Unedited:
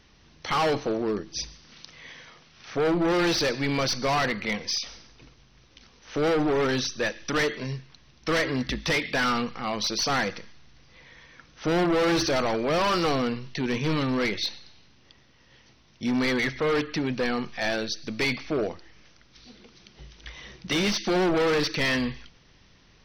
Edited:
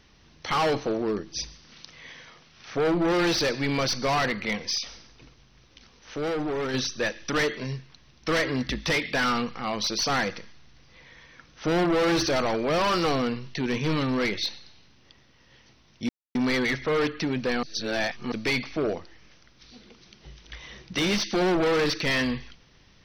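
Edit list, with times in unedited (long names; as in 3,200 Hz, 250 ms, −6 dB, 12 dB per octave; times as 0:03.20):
0:06.14–0:06.74: clip gain −5 dB
0:16.09: splice in silence 0.26 s
0:17.37–0:18.06: reverse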